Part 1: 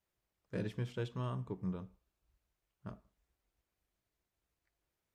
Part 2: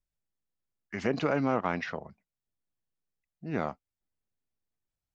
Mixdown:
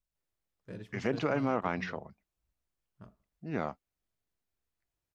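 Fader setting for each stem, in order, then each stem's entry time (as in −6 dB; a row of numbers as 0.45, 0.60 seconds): −6.0, −2.5 decibels; 0.15, 0.00 seconds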